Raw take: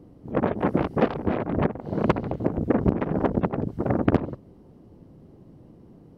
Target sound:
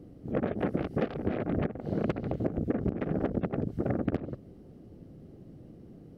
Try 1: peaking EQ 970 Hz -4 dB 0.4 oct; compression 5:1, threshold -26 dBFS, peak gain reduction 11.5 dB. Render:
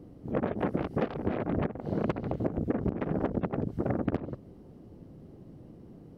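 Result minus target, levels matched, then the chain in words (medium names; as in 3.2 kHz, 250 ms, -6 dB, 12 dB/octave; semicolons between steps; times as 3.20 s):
1 kHz band +2.5 dB
peaking EQ 970 Hz -12.5 dB 0.4 oct; compression 5:1, threshold -26 dBFS, peak gain reduction 11.5 dB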